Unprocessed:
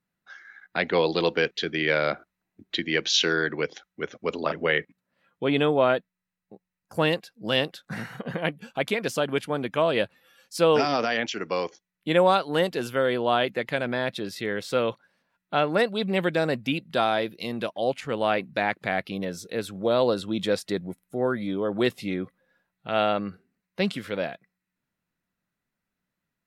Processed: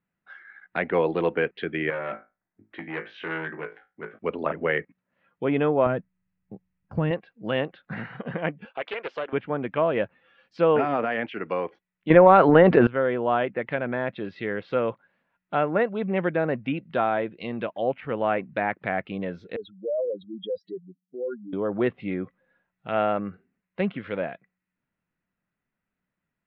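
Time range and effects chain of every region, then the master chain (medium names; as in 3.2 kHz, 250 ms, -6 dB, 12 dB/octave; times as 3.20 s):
1.90–4.19 s: resonant high shelf 2.6 kHz -13.5 dB, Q 1.5 + feedback comb 54 Hz, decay 0.24 s, mix 90% + transformer saturation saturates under 1.7 kHz
5.86–7.11 s: tone controls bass +14 dB, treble -1 dB + compression 5:1, threshold -20 dBFS
8.65–9.33 s: high-pass 400 Hz 24 dB/octave + compression 2:1, threshold -28 dBFS + loudspeaker Doppler distortion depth 0.2 ms
12.10–12.87 s: peaking EQ 3.2 kHz -6 dB 0.7 oct + transient shaper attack +10 dB, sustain +6 dB + level flattener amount 70%
19.56–21.53 s: spectral contrast enhancement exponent 3.7 + high-pass 710 Hz 6 dB/octave
whole clip: low-pass that closes with the level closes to 2.1 kHz, closed at -23.5 dBFS; low-pass 2.9 kHz 24 dB/octave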